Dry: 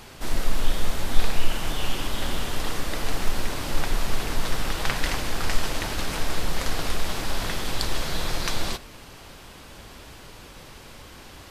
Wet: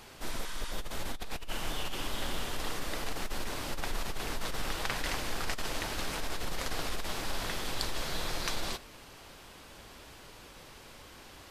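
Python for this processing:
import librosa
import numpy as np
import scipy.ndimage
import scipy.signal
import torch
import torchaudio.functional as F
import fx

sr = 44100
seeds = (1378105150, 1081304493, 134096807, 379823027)

y = fx.bass_treble(x, sr, bass_db=-4, treble_db=0)
y = fx.over_compress(y, sr, threshold_db=-23.0, ratio=-1.0)
y = fx.spec_repair(y, sr, seeds[0], start_s=0.31, length_s=0.44, low_hz=870.0, high_hz=12000.0, source='both')
y = y * librosa.db_to_amplitude(-7.5)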